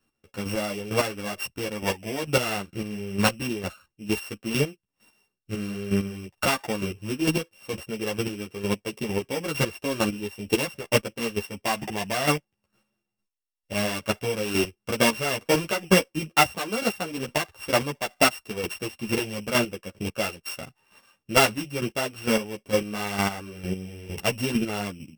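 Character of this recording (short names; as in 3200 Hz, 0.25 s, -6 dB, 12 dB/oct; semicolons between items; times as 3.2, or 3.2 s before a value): a buzz of ramps at a fixed pitch in blocks of 16 samples; chopped level 2.2 Hz, depth 65%, duty 20%; a shimmering, thickened sound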